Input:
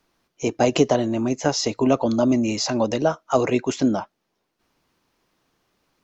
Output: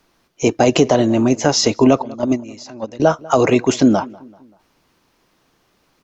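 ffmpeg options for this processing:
ffmpeg -i in.wav -filter_complex "[0:a]asettb=1/sr,asplit=3[link_01][link_02][link_03];[link_01]atrim=end=2.024[link_04];[link_02]atrim=start=2.02:end=3,asetpts=PTS-STARTPTS,afade=type=in:duration=0.004:curve=qsin,afade=type=out:start_time=0.976:duration=0.004:curve=qsin,agate=range=-20dB:threshold=-16dB:ratio=16:detection=peak[link_05];[link_03]atrim=start=2.996[link_06];[link_04][link_05]acrossfade=duration=0.004:curve1=hsin:curve2=qsin[link_07];[link_07][link_06]acrossfade=duration=0.004:curve1=qsin:curve2=hsin,asplit=2[link_08][link_09];[link_09]adelay=193,lowpass=frequency=2400:poles=1,volume=-23dB,asplit=2[link_10][link_11];[link_11]adelay=193,lowpass=frequency=2400:poles=1,volume=0.48,asplit=2[link_12][link_13];[link_13]adelay=193,lowpass=frequency=2400:poles=1,volume=0.48[link_14];[link_10][link_12][link_14]amix=inputs=3:normalize=0[link_15];[link_08][link_15]amix=inputs=2:normalize=0,alimiter=level_in=9dB:limit=-1dB:release=50:level=0:latency=1,volume=-1dB" out.wav

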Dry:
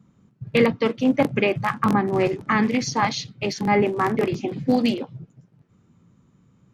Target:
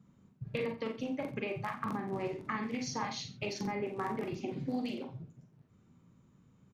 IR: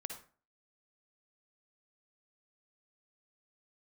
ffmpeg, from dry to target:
-filter_complex "[0:a]acompressor=threshold=-28dB:ratio=6,aecho=1:1:88:0.188[link_01];[1:a]atrim=start_sample=2205,afade=type=out:start_time=0.13:duration=0.01,atrim=end_sample=6174,asetrate=61740,aresample=44100[link_02];[link_01][link_02]afir=irnorm=-1:irlink=0"

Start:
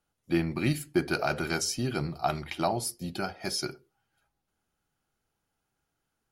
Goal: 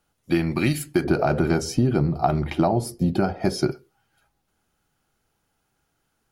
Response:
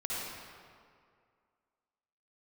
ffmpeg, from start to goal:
-filter_complex "[0:a]asettb=1/sr,asplit=3[link_01][link_02][link_03];[link_01]atrim=end=1.044[link_04];[link_02]atrim=start=1.04:end=3.72,asetpts=PTS-STARTPTS,afade=type=in:duration=0.004:curve=qsin,afade=type=out:start_time=2.676:duration=0.004:curve=qsin,tiltshelf=frequency=1200:gain=9.5[link_05];[link_03]atrim=start=3.716[link_06];[link_04][link_05]acrossfade=duration=0.004:curve1=hsin:curve2=qsin[link_07];[link_07][link_06]acrossfade=duration=0.004:curve1=qsin:curve2=hsin,acompressor=threshold=-25dB:ratio=6,volume=8.5dB"

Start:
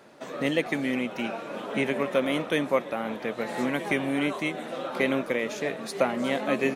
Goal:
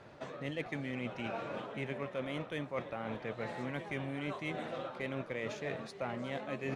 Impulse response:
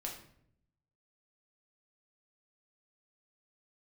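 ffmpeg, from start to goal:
-af "adynamicsmooth=sensitivity=2.5:basefreq=5500,lowshelf=frequency=150:width_type=q:width=1.5:gain=11,areverse,acompressor=threshold=-34dB:ratio=6,areverse,volume=-1.5dB"

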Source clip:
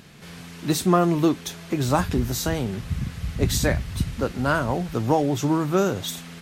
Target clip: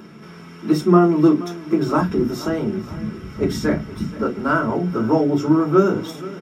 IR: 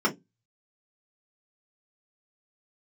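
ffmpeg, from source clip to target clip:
-filter_complex "[0:a]acompressor=mode=upward:threshold=-39dB:ratio=2.5,aecho=1:1:475|950|1425|1900:0.133|0.068|0.0347|0.0177[link_01];[1:a]atrim=start_sample=2205[link_02];[link_01][link_02]afir=irnorm=-1:irlink=0,volume=-11.5dB"

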